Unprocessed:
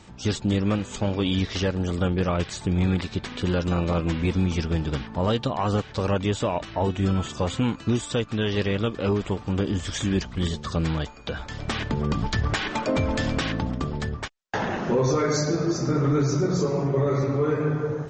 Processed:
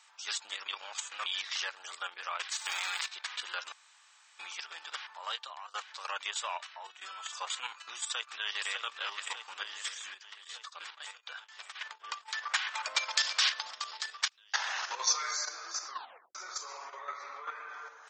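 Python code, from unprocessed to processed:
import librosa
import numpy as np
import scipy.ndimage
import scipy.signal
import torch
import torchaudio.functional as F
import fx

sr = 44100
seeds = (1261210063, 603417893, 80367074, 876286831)

y = fx.envelope_flatten(x, sr, power=0.6, at=(2.51, 3.05), fade=0.02)
y = fx.echo_throw(y, sr, start_s=8.02, length_s=0.73, ms=600, feedback_pct=75, wet_db=-5.5)
y = fx.tremolo_shape(y, sr, shape='triangle', hz=3.9, depth_pct=95, at=(9.93, 12.27), fade=0.02)
y = fx.peak_eq(y, sr, hz=5000.0, db=12.0, octaves=1.3, at=(12.94, 15.31))
y = fx.air_absorb(y, sr, metres=110.0, at=(16.99, 17.69))
y = fx.edit(y, sr, fx.reverse_span(start_s=0.68, length_s=0.58),
    fx.room_tone_fill(start_s=3.72, length_s=0.67),
    fx.fade_out_to(start_s=4.97, length_s=0.77, curve='qsin', floor_db=-24.0),
    fx.fade_out_to(start_s=6.51, length_s=0.5, floor_db=-10.0),
    fx.tape_stop(start_s=15.86, length_s=0.49), tone=tone)
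y = scipy.signal.sosfilt(scipy.signal.butter(4, 1000.0, 'highpass', fs=sr, output='sos'), y)
y = fx.level_steps(y, sr, step_db=9)
y = fx.high_shelf(y, sr, hz=6100.0, db=4.5)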